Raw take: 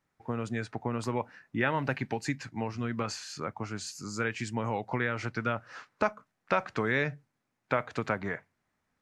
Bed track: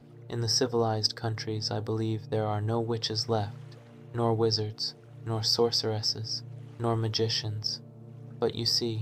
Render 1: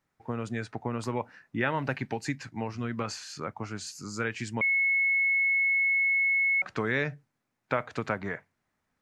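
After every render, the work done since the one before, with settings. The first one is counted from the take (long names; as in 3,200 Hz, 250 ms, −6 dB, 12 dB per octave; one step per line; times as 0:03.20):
0:04.61–0:06.62: beep over 2,190 Hz −22 dBFS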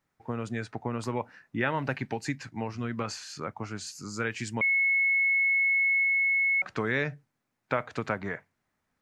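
0:04.24–0:06.04: high-shelf EQ 6,000 Hz +5.5 dB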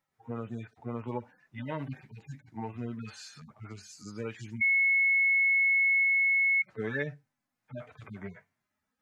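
harmonic-percussive split with one part muted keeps harmonic
low-shelf EQ 430 Hz −4 dB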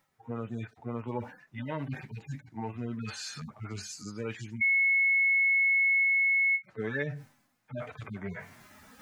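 reversed playback
upward compression, threshold −31 dBFS
reversed playback
every ending faded ahead of time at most 380 dB per second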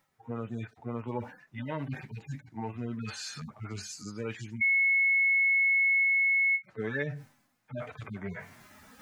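no processing that can be heard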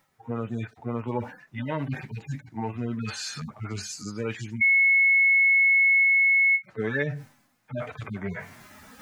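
level +5.5 dB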